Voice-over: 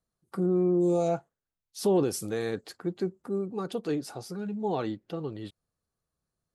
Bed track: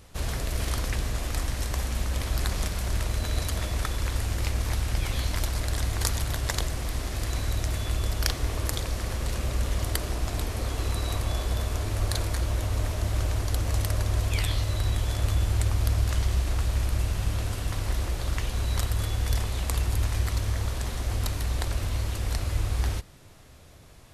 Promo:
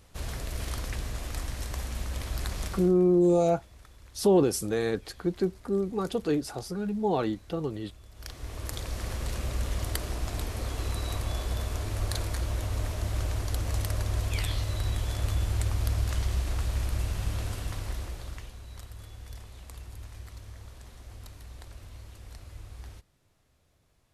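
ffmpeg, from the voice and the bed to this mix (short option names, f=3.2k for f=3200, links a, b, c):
-filter_complex "[0:a]adelay=2400,volume=3dB[a];[1:a]volume=15dB,afade=t=out:st=2.72:d=0.22:silence=0.11885,afade=t=in:st=8.12:d=0.93:silence=0.0944061,afade=t=out:st=17.51:d=1.08:silence=0.199526[b];[a][b]amix=inputs=2:normalize=0"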